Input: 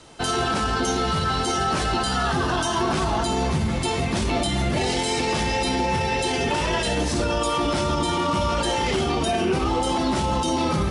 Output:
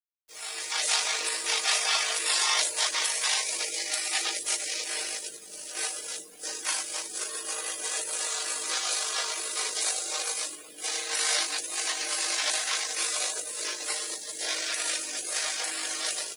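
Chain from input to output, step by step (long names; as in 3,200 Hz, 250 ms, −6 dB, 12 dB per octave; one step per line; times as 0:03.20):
high-pass filter 1,000 Hz 24 dB per octave
gate on every frequency bin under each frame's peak −25 dB weak
automatic gain control gain up to 15 dB
time stretch by overlap-add 1.5×, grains 39 ms
bit reduction 9 bits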